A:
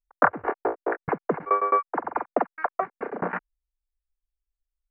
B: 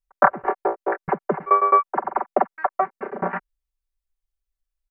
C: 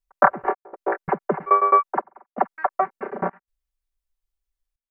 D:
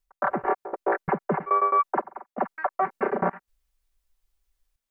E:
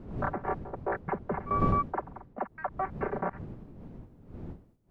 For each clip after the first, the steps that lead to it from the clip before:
comb 5.2 ms, depth 73%; dynamic bell 750 Hz, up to +5 dB, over -30 dBFS, Q 1.1; trim -1 dB
trance gate "xxx.xxxxxxx..xx" 82 bpm -24 dB
reverse; compression 5:1, threshold -26 dBFS, peak gain reduction 15.5 dB; reverse; peak limiter -22 dBFS, peak gain reduction 9 dB; trim +8.5 dB
wind noise 210 Hz -31 dBFS; trim -7.5 dB

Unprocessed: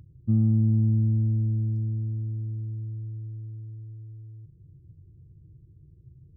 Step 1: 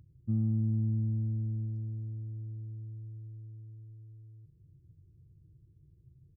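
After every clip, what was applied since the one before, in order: feedback delay 689 ms, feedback 45%, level -21 dB; trim -8 dB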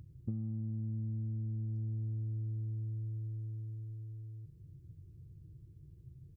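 compression 16:1, threshold -40 dBFS, peak gain reduction 15 dB; trim +5.5 dB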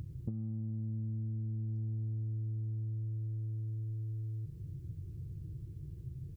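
compression 4:1, threshold -47 dBFS, peak gain reduction 12.5 dB; trim +10 dB

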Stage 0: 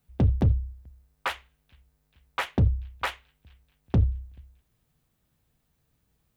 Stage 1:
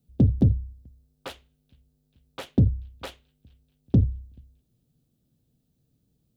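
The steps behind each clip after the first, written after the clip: graphic EQ 125/250/500/1000/2000/4000 Hz +7/+10/+4/-9/-10/+3 dB; trim -4 dB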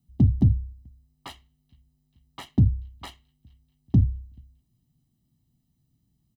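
comb 1 ms, depth 87%; trim -4 dB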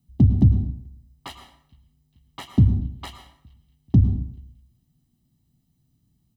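plate-style reverb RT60 0.65 s, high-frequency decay 0.75×, pre-delay 90 ms, DRR 8.5 dB; trim +3 dB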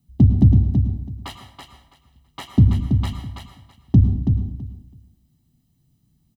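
feedback delay 329 ms, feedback 18%, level -6 dB; trim +2.5 dB

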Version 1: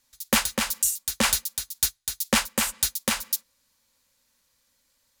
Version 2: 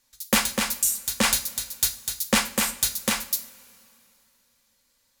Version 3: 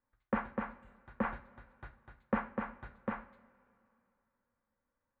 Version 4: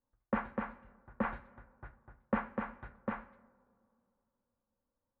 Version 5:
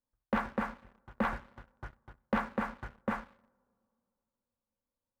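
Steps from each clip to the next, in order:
two-slope reverb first 0.35 s, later 2.8 s, from -21 dB, DRR 6.5 dB
inverse Chebyshev low-pass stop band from 5.1 kHz, stop band 60 dB; trim -8.5 dB
level-controlled noise filter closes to 860 Hz, open at -34 dBFS
waveshaping leveller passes 2; trim -2 dB

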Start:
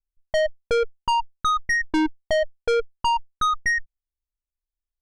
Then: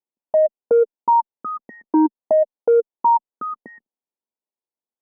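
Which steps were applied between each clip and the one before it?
elliptic band-pass 220–960 Hz, stop band 60 dB; trim +7 dB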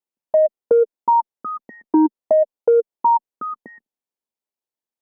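dynamic bell 430 Hz, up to +4 dB, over -28 dBFS, Q 0.88; compression, threshold -11 dBFS, peak gain reduction 4 dB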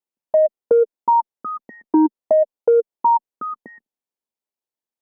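no audible change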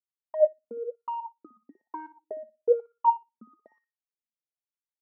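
waveshaping leveller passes 1; flutter echo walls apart 10.2 m, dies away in 0.27 s; wah-wah 1.1 Hz 220–1300 Hz, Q 10; trim -3.5 dB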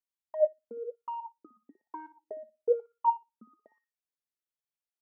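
feedback comb 430 Hz, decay 0.16 s, harmonics all, mix 40%

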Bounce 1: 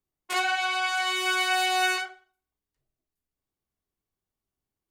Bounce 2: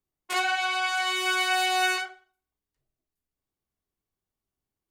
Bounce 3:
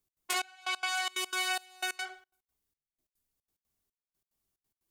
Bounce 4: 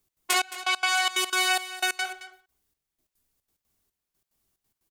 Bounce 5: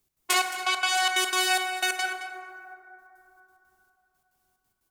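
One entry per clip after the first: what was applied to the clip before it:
no audible change
treble shelf 4.2 kHz +9.5 dB; compression, threshold -28 dBFS, peak gain reduction 11.5 dB; trance gate "x.xxx...x.xxx." 181 bpm -24 dB
delay 219 ms -14.5 dB; trim +8 dB
plate-style reverb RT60 3.3 s, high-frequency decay 0.3×, DRR 4.5 dB

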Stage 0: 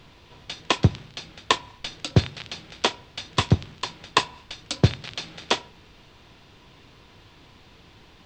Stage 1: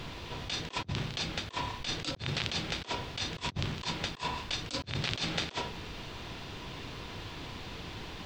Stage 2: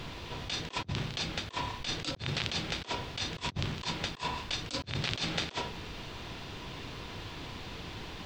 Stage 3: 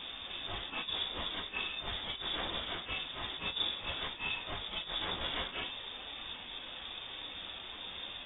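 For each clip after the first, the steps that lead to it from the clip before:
compressor with a negative ratio -39 dBFS, ratio -1
no audible change
phase randomisation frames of 100 ms; frequency inversion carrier 3.6 kHz; peaking EQ 130 Hz -10 dB 0.29 oct; trim -2.5 dB

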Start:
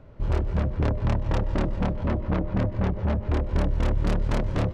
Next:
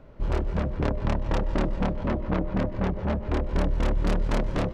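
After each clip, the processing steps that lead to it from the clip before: peaking EQ 95 Hz -10 dB 0.71 oct; trim +1 dB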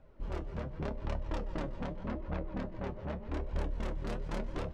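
flange 0.85 Hz, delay 1.1 ms, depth 7.5 ms, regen +39%; feedback comb 79 Hz, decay 0.17 s, harmonics all, mix 60%; trim -3.5 dB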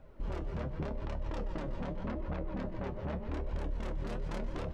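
peak limiter -32.5 dBFS, peak gain reduction 9 dB; trim +4 dB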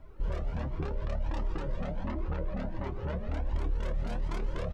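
speakerphone echo 110 ms, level -15 dB; Shepard-style flanger rising 1.4 Hz; trim +6.5 dB

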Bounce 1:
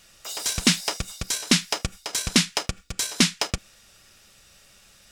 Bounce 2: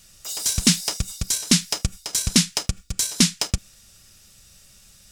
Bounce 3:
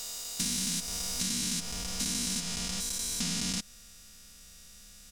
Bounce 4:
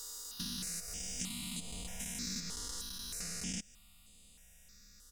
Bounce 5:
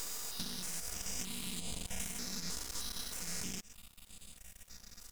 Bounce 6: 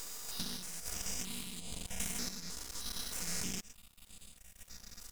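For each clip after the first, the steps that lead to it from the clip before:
tone controls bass +11 dB, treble +10 dB; trim -4.5 dB
spectrogram pixelated in time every 400 ms; comb 4.2 ms, depth 74%; compression, threshold -27 dBFS, peak gain reduction 7 dB; trim -1.5 dB
stepped phaser 3.2 Hz 660–5600 Hz; trim -5 dB
compression, threshold -44 dBFS, peak gain reduction 9.5 dB; half-wave rectifier; trim +10 dB
random-step tremolo; trim +3 dB

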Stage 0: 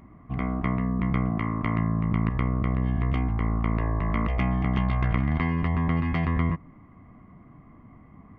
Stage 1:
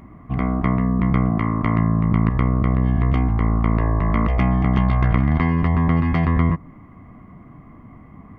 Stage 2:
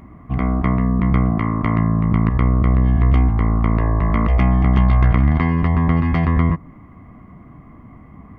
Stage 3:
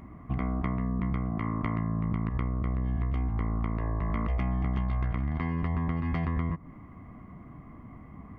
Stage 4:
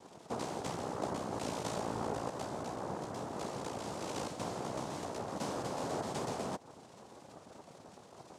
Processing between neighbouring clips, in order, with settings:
dynamic bell 2.7 kHz, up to -5 dB, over -50 dBFS, Q 1.4; trim +7 dB
peaking EQ 66 Hz +6.5 dB 0.25 oct; trim +1 dB
compression 6:1, threshold -21 dBFS, peak gain reduction 11.5 dB; trim -5 dB
noise-vocoded speech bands 2; trim -7 dB

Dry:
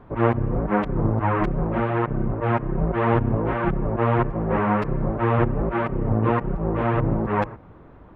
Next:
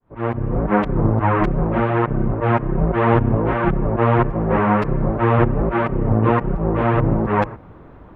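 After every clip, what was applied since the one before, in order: fade-in on the opening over 0.64 s; trim +4.5 dB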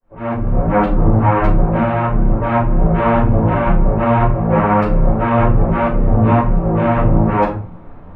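simulated room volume 190 m³, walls furnished, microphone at 5.1 m; trim -8 dB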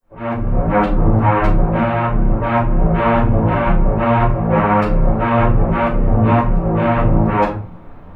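treble shelf 2.8 kHz +8.5 dB; trim -1 dB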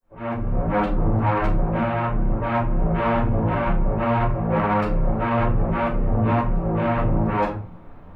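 saturation -5.5 dBFS, distortion -21 dB; trim -5.5 dB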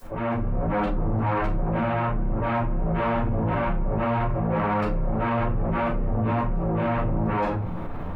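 level flattener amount 70%; trim -5.5 dB

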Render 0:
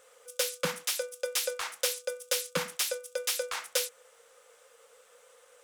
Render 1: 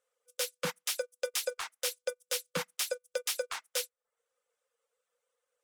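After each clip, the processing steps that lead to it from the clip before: reverb removal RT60 0.54 s; peak limiter -23.5 dBFS, peak gain reduction 8.5 dB; upward expansion 2.5:1, over -50 dBFS; trim +3.5 dB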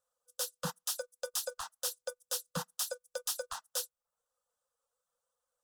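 bass shelf 170 Hz +9 dB; static phaser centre 920 Hz, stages 4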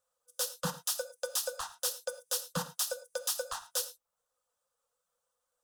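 gated-style reverb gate 130 ms flat, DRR 11 dB; trim +2.5 dB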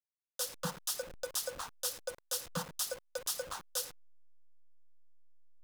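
send-on-delta sampling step -40 dBFS; trim -3 dB

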